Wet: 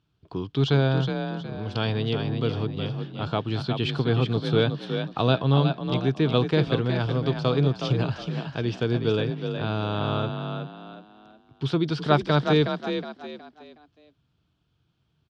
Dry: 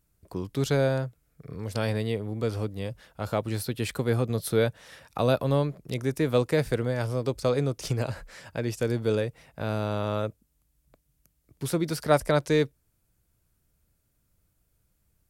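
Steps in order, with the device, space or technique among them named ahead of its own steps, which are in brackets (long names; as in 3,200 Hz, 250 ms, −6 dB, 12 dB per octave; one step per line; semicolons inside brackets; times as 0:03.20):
frequency-shifting delay pedal into a guitar cabinet (echo with shifted repeats 367 ms, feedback 34%, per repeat +36 Hz, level −6.5 dB; loudspeaker in its box 100–4,300 Hz, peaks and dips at 140 Hz +4 dB, 200 Hz −4 dB, 550 Hz −10 dB, 2,000 Hz −9 dB, 3,200 Hz +8 dB)
level +4 dB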